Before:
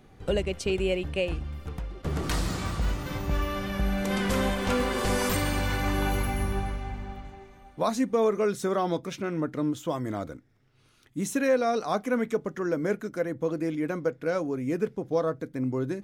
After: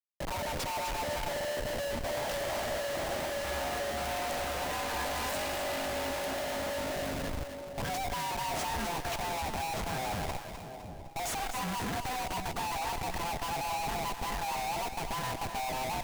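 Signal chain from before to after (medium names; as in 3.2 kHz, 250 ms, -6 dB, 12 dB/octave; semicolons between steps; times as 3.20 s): split-band scrambler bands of 500 Hz; Schmitt trigger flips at -39 dBFS; two-band feedback delay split 700 Hz, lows 709 ms, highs 254 ms, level -8 dB; trim -6 dB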